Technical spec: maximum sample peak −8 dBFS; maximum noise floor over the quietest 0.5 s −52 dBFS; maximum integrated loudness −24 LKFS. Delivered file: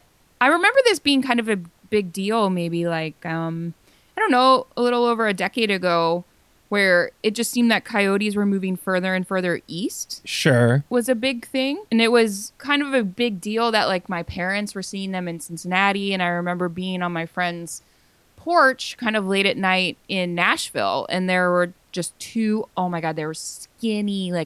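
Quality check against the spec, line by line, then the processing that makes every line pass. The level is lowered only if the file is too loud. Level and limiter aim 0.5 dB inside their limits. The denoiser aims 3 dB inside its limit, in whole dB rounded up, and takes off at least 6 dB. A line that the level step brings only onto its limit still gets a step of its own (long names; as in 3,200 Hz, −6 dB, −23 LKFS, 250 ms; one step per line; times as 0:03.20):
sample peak −3.5 dBFS: out of spec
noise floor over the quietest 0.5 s −58 dBFS: in spec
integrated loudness −21.0 LKFS: out of spec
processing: level −3.5 dB
brickwall limiter −8.5 dBFS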